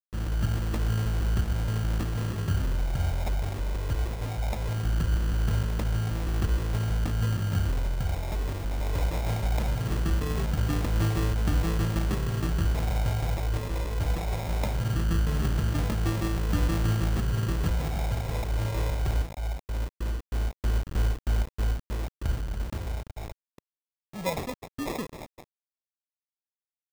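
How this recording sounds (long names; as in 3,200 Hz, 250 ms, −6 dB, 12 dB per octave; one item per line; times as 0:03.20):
a quantiser's noise floor 6 bits, dither none
phaser sweep stages 6, 0.2 Hz, lowest notch 250–1,600 Hz
aliases and images of a low sample rate 1,500 Hz, jitter 0%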